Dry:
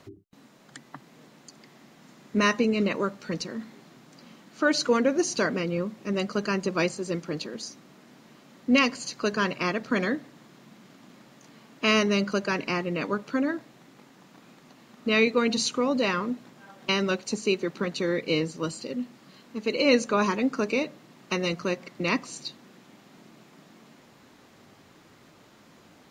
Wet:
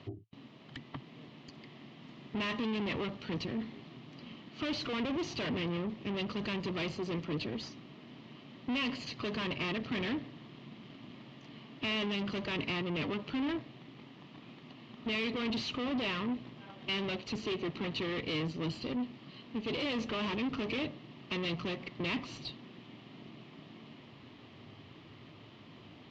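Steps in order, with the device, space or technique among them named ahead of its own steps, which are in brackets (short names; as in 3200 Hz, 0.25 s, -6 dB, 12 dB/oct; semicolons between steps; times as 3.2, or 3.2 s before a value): guitar amplifier (tube stage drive 37 dB, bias 0.7; tone controls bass +5 dB, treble -5 dB; speaker cabinet 76–4600 Hz, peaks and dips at 110 Hz +5 dB, 190 Hz -6 dB, 520 Hz -5 dB, 820 Hz -4 dB, 1500 Hz -10 dB, 3000 Hz +7 dB); gain +5 dB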